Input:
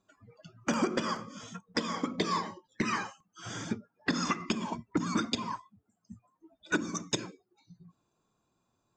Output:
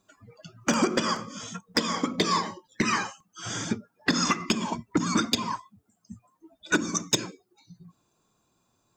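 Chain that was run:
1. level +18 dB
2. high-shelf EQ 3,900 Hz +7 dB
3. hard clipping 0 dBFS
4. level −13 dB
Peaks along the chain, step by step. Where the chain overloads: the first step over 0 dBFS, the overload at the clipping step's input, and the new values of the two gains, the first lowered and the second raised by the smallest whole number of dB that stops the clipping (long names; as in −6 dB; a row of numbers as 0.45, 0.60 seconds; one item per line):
+2.0, +6.0, 0.0, −13.0 dBFS
step 1, 6.0 dB
step 1 +12 dB, step 4 −7 dB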